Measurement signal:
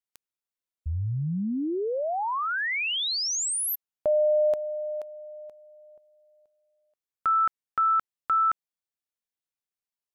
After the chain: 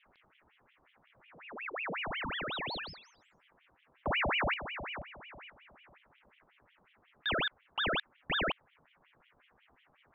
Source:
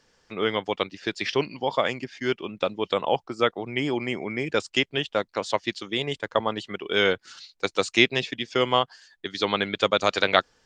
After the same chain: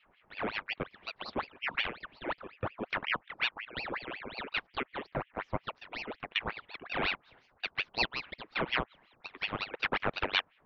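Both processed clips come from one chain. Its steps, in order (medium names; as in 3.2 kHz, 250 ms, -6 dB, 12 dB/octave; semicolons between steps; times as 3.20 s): mistuned SSB -340 Hz 310–2400 Hz; band noise 45–690 Hz -59 dBFS; ring modulator with a swept carrier 1.5 kHz, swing 80%, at 5.5 Hz; trim -6.5 dB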